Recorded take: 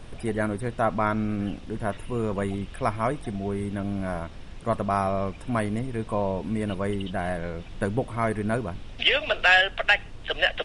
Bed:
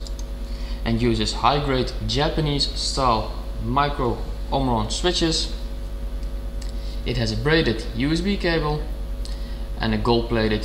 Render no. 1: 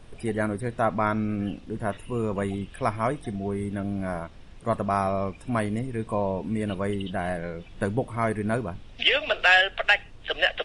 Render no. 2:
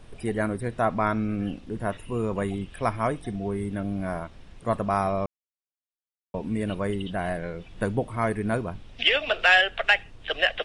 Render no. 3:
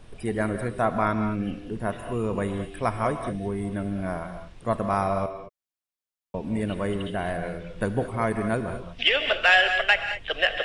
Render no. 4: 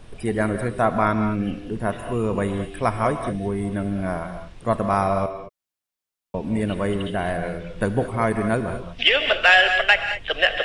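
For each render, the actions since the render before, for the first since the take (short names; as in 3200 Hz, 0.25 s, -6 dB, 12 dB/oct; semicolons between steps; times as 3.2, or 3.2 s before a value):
noise print and reduce 6 dB
5.26–6.34 mute
non-linear reverb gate 0.24 s rising, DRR 7.5 dB
gain +4 dB; limiter -3 dBFS, peak gain reduction 1 dB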